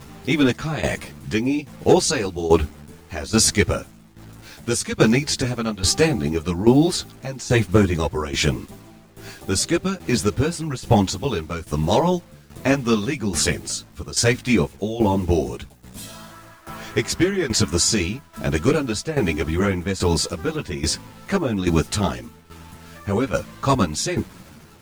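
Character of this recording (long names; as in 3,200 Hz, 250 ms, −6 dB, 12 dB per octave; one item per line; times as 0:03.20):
a quantiser's noise floor 8 bits, dither none
tremolo saw down 1.2 Hz, depth 80%
a shimmering, thickened sound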